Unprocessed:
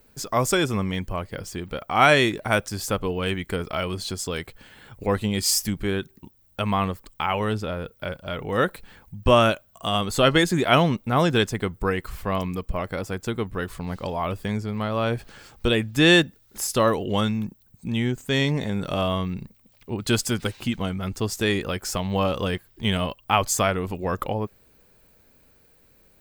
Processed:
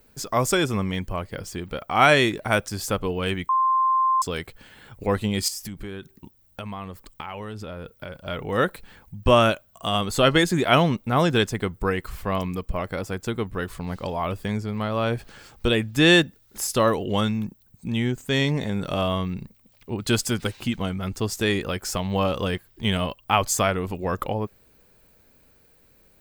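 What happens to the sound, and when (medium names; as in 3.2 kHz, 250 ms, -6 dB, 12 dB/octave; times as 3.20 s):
3.49–4.22 s: bleep 1.05 kHz -17 dBFS
5.48–8.15 s: compression 5:1, threshold -31 dBFS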